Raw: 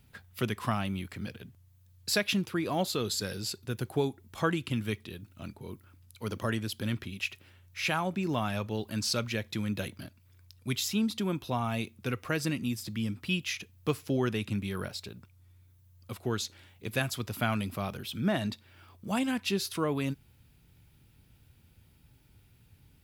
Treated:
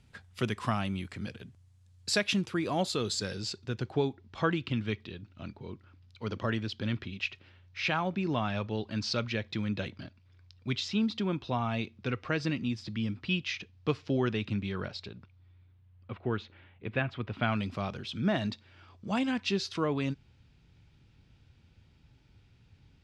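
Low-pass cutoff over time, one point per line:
low-pass 24 dB/octave
2.97 s 8.8 kHz
4.10 s 5 kHz
15.04 s 5 kHz
16.15 s 2.8 kHz
17.25 s 2.8 kHz
17.67 s 6.1 kHz

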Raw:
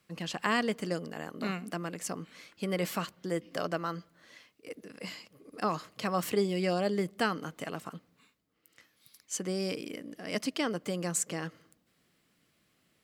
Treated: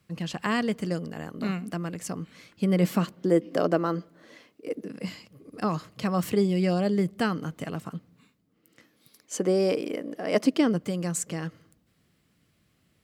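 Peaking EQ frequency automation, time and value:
peaking EQ +13 dB 2.7 oct
2.27 s 77 Hz
3.36 s 340 Hz
4.75 s 340 Hz
5.15 s 95 Hz
7.90 s 95 Hz
9.69 s 600 Hz
10.35 s 600 Hz
10.92 s 69 Hz

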